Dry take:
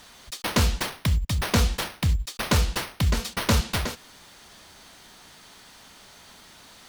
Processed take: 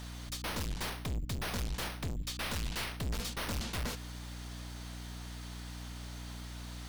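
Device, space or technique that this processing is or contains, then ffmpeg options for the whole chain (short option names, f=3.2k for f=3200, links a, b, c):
valve amplifier with mains hum: -filter_complex "[0:a]asettb=1/sr,asplit=3[a][b][c];[a]atrim=end=2.164[d];[b]atrim=start=2.16:end=2.97,asetpts=PTS-STARTPTS,afade=t=in:d=0.004:c=qsin,afade=t=out:st=0.806:d=0.004:c=qsin,equalizer=f=2.8k:w=0.65:g=5[e];[c]atrim=start=2.966[f];[d][e]acrossfade=d=0.004:c1=hsin:c2=qsin[g];[g][f]acrossfade=d=0.004:c1=qsin:c2=hsin,aeval=exprs='(tanh(56.2*val(0)+0.4)-tanh(0.4))/56.2':c=same,aeval=exprs='val(0)+0.00708*(sin(2*PI*60*n/s)+sin(2*PI*2*60*n/s)/2+sin(2*PI*3*60*n/s)/3+sin(2*PI*4*60*n/s)/4+sin(2*PI*5*60*n/s)/5)':c=same"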